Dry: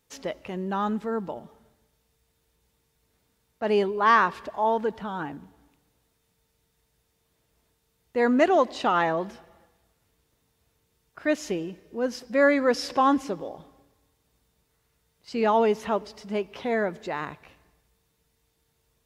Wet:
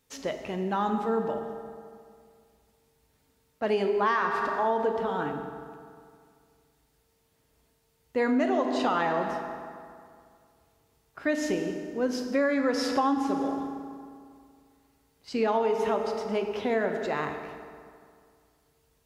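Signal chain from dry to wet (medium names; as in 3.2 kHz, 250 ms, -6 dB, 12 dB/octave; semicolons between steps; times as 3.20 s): reverberation RT60 2.2 s, pre-delay 4 ms, DRR 4.5 dB; compression 6:1, threshold -22 dBFS, peak gain reduction 9 dB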